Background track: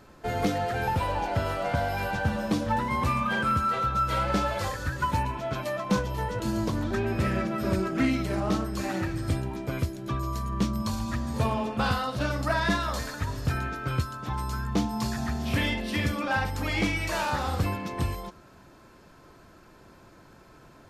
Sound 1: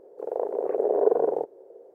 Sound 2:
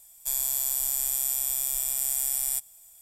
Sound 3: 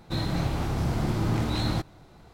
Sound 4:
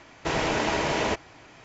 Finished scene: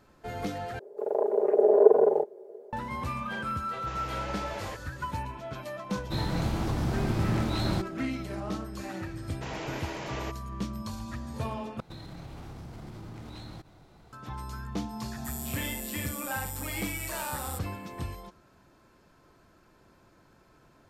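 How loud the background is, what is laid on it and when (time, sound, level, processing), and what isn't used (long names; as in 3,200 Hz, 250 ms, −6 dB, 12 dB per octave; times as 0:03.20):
background track −7.5 dB
0:00.79: overwrite with 1 −0.5 dB + comb filter 4.9 ms, depth 95%
0:03.61: mix in 4 −16 dB
0:06.00: mix in 3 −2.5 dB
0:09.16: mix in 4 −12 dB
0:11.80: overwrite with 3 −4 dB + downward compressor 12 to 1, threshold −35 dBFS
0:14.99: mix in 2 −13 dB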